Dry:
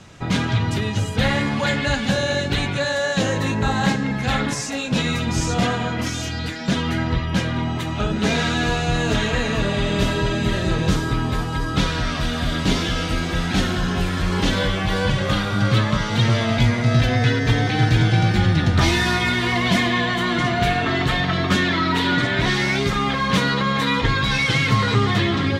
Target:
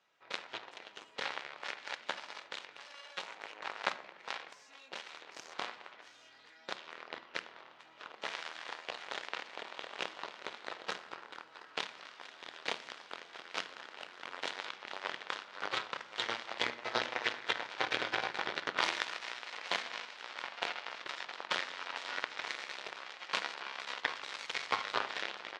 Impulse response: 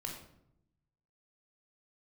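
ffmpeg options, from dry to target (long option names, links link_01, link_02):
-filter_complex "[0:a]aeval=exprs='0.531*(cos(1*acos(clip(val(0)/0.531,-1,1)))-cos(1*PI/2))+0.15*(cos(2*acos(clip(val(0)/0.531,-1,1)))-cos(2*PI/2))+0.188*(cos(3*acos(clip(val(0)/0.531,-1,1)))-cos(3*PI/2))+0.0266*(cos(4*acos(clip(val(0)/0.531,-1,1)))-cos(4*PI/2))+0.00299*(cos(7*acos(clip(val(0)/0.531,-1,1)))-cos(7*PI/2))':channel_layout=same,highpass=660,lowpass=4400,asplit=2[link_01][link_02];[1:a]atrim=start_sample=2205[link_03];[link_02][link_03]afir=irnorm=-1:irlink=0,volume=-9.5dB[link_04];[link_01][link_04]amix=inputs=2:normalize=0,volume=-6dB"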